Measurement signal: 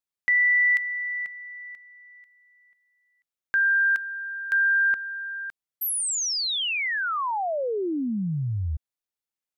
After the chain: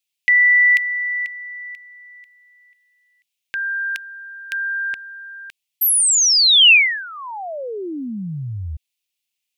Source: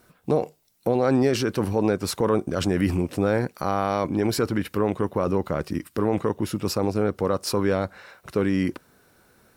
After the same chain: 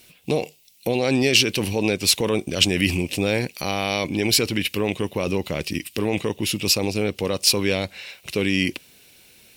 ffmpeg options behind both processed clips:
-af "highshelf=f=1.9k:t=q:w=3:g=11"

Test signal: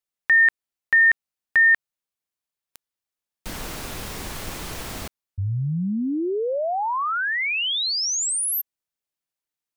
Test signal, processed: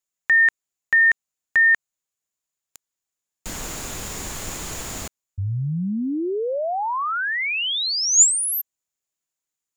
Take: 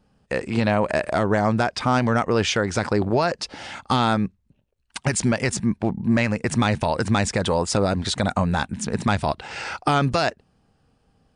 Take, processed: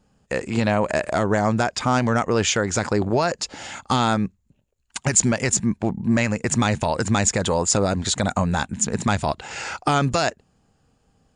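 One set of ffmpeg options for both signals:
-af "equalizer=f=7k:w=5.5:g=14.5"

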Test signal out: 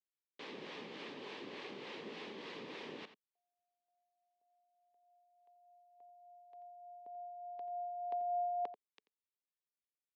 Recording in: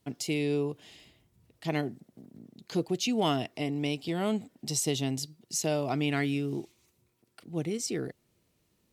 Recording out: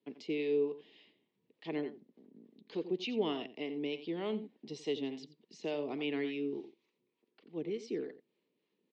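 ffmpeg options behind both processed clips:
-filter_complex "[0:a]highpass=f=210:w=0.5412,highpass=f=210:w=1.3066,equalizer=f=430:t=q:w=4:g=6,equalizer=f=690:t=q:w=4:g=-8,equalizer=f=1.4k:t=q:w=4:g=-10,lowpass=f=3.8k:w=0.5412,lowpass=f=3.8k:w=1.3066,asplit=2[a][b];[b]adelay=87.46,volume=-13dB,highshelf=f=4k:g=-1.97[c];[a][c]amix=inputs=2:normalize=0,acrossover=split=530[d][e];[d]aeval=exprs='val(0)*(1-0.5/2+0.5/2*cos(2*PI*3.4*n/s))':c=same[f];[e]aeval=exprs='val(0)*(1-0.5/2-0.5/2*cos(2*PI*3.4*n/s))':c=same[g];[f][g]amix=inputs=2:normalize=0,volume=-4dB"

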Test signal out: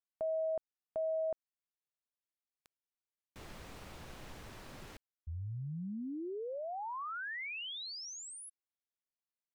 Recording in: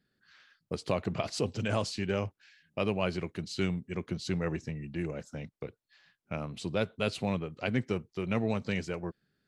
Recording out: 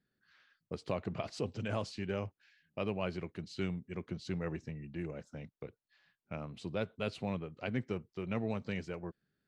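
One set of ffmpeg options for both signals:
-af "lowpass=f=3.6k:p=1,volume=-5.5dB"

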